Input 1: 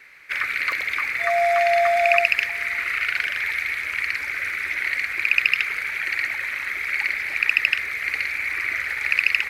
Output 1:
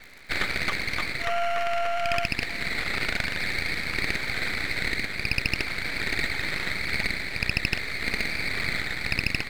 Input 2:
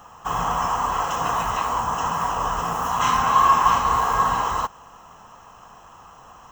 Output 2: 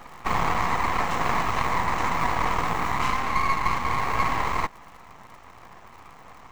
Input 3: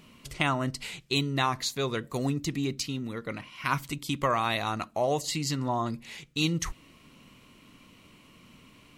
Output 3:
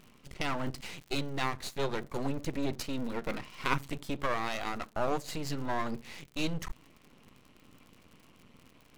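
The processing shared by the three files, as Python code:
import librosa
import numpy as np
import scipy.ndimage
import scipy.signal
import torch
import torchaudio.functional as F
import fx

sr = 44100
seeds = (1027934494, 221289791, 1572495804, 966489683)

y = fx.high_shelf(x, sr, hz=2900.0, db=-9.5)
y = fx.dmg_crackle(y, sr, seeds[0], per_s=130.0, level_db=-44.0)
y = fx.rider(y, sr, range_db=5, speed_s=0.5)
y = np.maximum(y, 0.0)
y = y * 10.0 ** (2.0 / 20.0)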